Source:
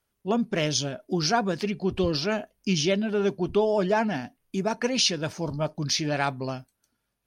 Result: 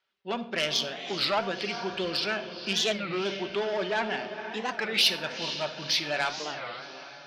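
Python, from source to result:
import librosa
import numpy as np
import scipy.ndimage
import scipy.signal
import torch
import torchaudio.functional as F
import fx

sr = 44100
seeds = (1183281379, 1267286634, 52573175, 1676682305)

y = scipy.signal.sosfilt(scipy.signal.butter(4, 3900.0, 'lowpass', fs=sr, output='sos'), x)
y = fx.low_shelf(y, sr, hz=200.0, db=-10.0)
y = fx.notch(y, sr, hz=1100.0, q=29.0)
y = fx.echo_diffused(y, sr, ms=469, feedback_pct=42, wet_db=-11.0)
y = 10.0 ** (-19.5 / 20.0) * np.tanh(y / 10.0 ** (-19.5 / 20.0))
y = fx.tilt_eq(y, sr, slope=3.5)
y = fx.room_shoebox(y, sr, seeds[0], volume_m3=2400.0, walls='furnished', distance_m=1.1)
y = fx.record_warp(y, sr, rpm=33.33, depth_cents=250.0)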